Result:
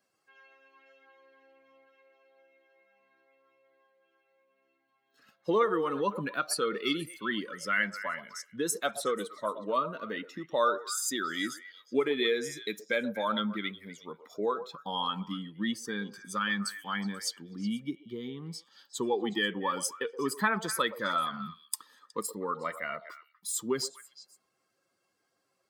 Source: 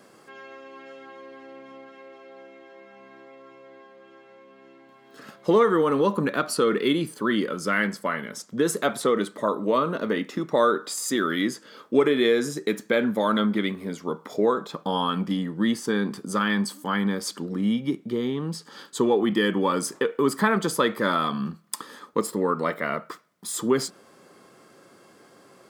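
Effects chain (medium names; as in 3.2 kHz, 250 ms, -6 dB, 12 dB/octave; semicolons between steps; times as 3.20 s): expander on every frequency bin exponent 1.5; tilt shelf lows -4.5 dB, about 820 Hz; repeats whose band climbs or falls 122 ms, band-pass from 620 Hz, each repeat 1.4 oct, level -9 dB; trim -4 dB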